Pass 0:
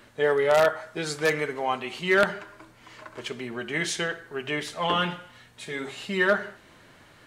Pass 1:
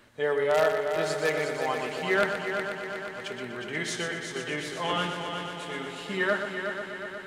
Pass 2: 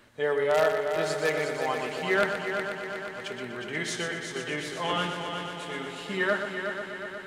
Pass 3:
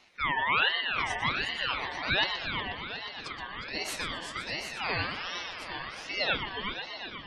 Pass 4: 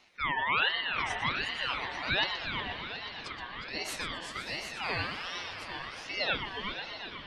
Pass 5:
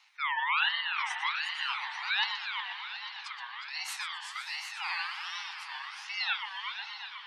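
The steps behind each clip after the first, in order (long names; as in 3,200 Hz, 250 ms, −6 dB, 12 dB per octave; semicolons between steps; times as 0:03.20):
echo machine with several playback heads 121 ms, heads first and third, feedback 73%, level −8 dB; level −4.5 dB
no processing that can be heard
gate on every frequency bin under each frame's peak −25 dB strong; ring modulator whose carrier an LFO sweeps 1,900 Hz, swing 30%, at 1.3 Hz
feedback delay with all-pass diffusion 553 ms, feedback 48%, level −15.5 dB; level −2 dB
Butterworth high-pass 800 Hz 96 dB per octave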